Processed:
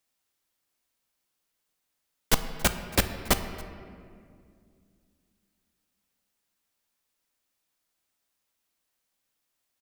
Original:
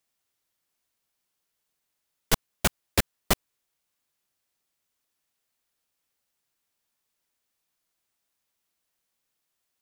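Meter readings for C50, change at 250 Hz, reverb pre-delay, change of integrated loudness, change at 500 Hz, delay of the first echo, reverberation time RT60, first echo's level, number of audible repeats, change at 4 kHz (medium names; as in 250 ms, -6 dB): 10.0 dB, +1.0 dB, 3 ms, 0.0 dB, +0.5 dB, 278 ms, 2.2 s, -22.0 dB, 1, +0.5 dB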